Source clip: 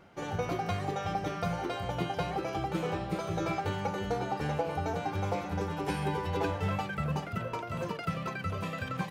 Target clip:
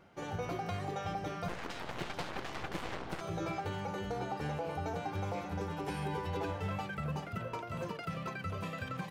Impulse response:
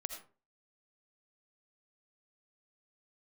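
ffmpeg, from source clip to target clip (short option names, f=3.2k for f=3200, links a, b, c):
-filter_complex "[0:a]asettb=1/sr,asplit=3[a][b][c];[a]atrim=end=1.484[d];[b]atrim=start=1.48:end=3.21,asetpts=PTS-STARTPTS,afade=t=in:d=0.004:c=qsin,afade=t=out:st=1.726:d=0.004:c=qsin,aeval=exprs='0.112*(cos(1*acos(clip(val(0)/0.112,-1,1)))-cos(1*PI/2))+0.0316*(cos(7*acos(clip(val(0)/0.112,-1,1)))-cos(7*PI/2))+0.0141*(cos(8*acos(clip(val(0)/0.112,-1,1)))-cos(8*PI/2))':c=same[e];[c]atrim=start=3.206[f];[d][e]acrossfade=d=0.004:c1=hsin:c2=qsin[g];[g][f]acrossfade=d=0.004:c1=qsin:c2=hsin,alimiter=limit=-23.5dB:level=0:latency=1:release=48,volume=-4dB"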